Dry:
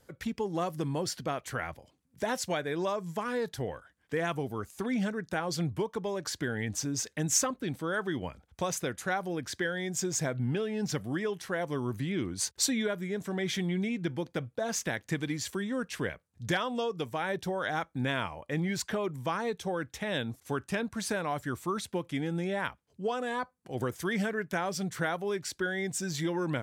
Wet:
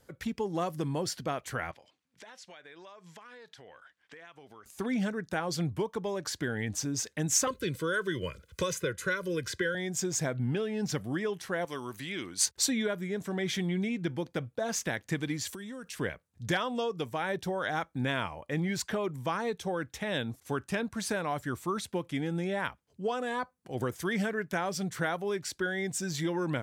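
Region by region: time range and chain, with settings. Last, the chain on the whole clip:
1.71–4.66 s: low-pass 3.2 kHz + tilt EQ +4.5 dB/octave + compression, threshold -48 dBFS
7.47–9.75 s: Butterworth band-stop 780 Hz, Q 1.5 + comb 2 ms, depth 61% + three bands compressed up and down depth 70%
11.65–12.46 s: low-pass 3.9 kHz 6 dB/octave + tilt EQ +4 dB/octave
15.47–15.99 s: treble shelf 4.4 kHz +10 dB + compression 10:1, threshold -38 dBFS
whole clip: none

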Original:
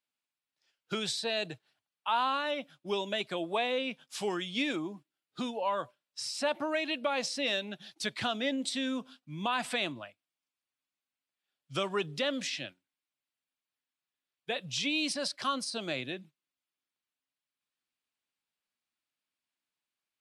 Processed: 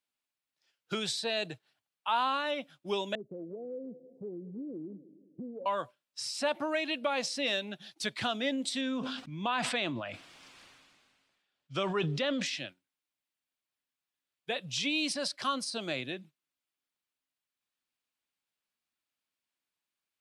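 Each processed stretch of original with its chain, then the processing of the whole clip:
3.15–5.66 s: elliptic low-pass 510 Hz, stop band 60 dB + multi-head delay 104 ms, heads second and third, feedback 43%, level -24 dB + compression 2.5:1, threshold -40 dBFS
8.81–12.46 s: distance through air 84 m + decay stretcher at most 30 dB/s
whole clip: none

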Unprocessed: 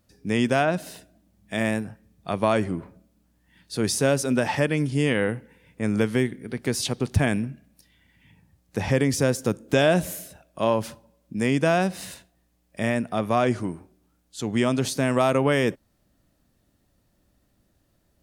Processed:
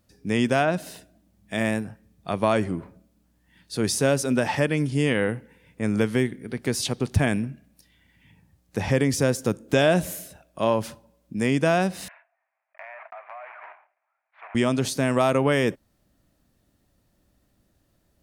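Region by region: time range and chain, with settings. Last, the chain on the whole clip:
12.08–14.55 s: block-companded coder 3-bit + Chebyshev band-pass 640–2400 Hz, order 4 + compression 8:1, threshold -37 dBFS
whole clip: none

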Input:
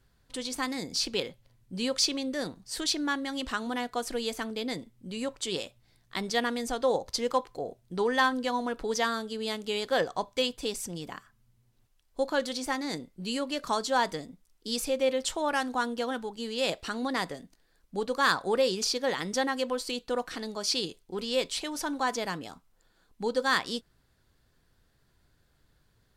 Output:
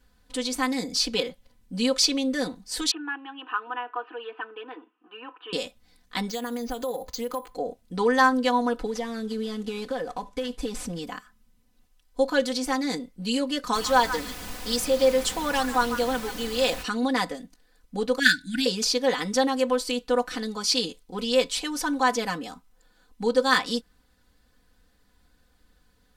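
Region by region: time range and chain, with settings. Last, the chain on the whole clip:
2.91–5.53 s: companding laws mixed up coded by mu + Chebyshev band-pass 320–2800 Hz, order 5 + static phaser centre 2.1 kHz, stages 6
6.29–7.54 s: compression, threshold -33 dBFS + careless resampling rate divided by 4×, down filtered, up hold
8.86–10.99 s: CVSD coder 64 kbps + compression, threshold -33 dBFS + tilt EQ -1.5 dB/octave
13.73–16.82 s: high-pass 250 Hz + added noise pink -42 dBFS + repeats whose band climbs or falls 143 ms, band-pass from 1.5 kHz, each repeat 1.4 oct, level -6.5 dB
18.19–18.66 s: brick-wall FIR band-stop 330–1400 Hz + transient shaper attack +11 dB, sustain -2 dB
whole clip: band-stop 620 Hz, Q 12; comb 4 ms, depth 90%; trim +2 dB

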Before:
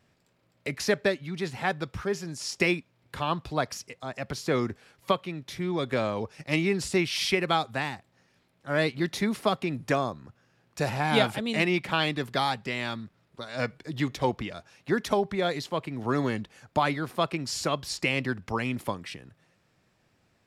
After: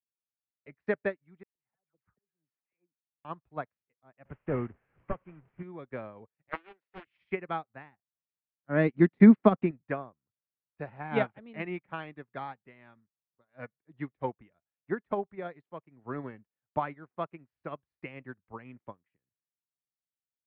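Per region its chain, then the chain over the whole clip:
1.43–3.25 s: bass shelf 280 Hz -3.5 dB + slow attack 557 ms + phase dispersion lows, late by 127 ms, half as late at 1.9 kHz
4.25–5.63 s: one-bit delta coder 16 kbps, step -34.5 dBFS + bass shelf 190 Hz +8 dB
6.49–7.07 s: band-pass 540–6100 Hz + treble shelf 3.1 kHz +5 dB + loudspeaker Doppler distortion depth 0.7 ms
8.69–9.71 s: peaking EQ 230 Hz +10 dB 1.5 oct + tape noise reduction on one side only encoder only
whole clip: low-pass 2.2 kHz 24 dB/octave; upward expansion 2.5:1, over -47 dBFS; trim +4 dB

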